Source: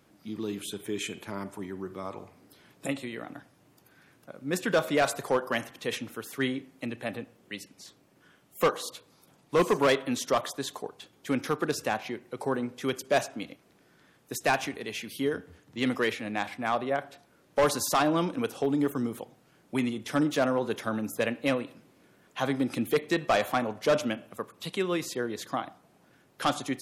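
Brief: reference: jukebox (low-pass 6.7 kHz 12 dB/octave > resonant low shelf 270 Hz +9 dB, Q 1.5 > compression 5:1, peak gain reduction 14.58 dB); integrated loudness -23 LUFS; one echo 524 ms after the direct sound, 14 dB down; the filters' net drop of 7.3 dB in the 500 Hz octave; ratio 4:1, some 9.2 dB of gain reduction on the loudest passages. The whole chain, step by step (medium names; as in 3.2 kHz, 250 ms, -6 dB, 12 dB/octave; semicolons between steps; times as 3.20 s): peaking EQ 500 Hz -7 dB; compression 4:1, threshold -34 dBFS; low-pass 6.7 kHz 12 dB/octave; resonant low shelf 270 Hz +9 dB, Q 1.5; delay 524 ms -14 dB; compression 5:1, threshold -41 dBFS; trim +22 dB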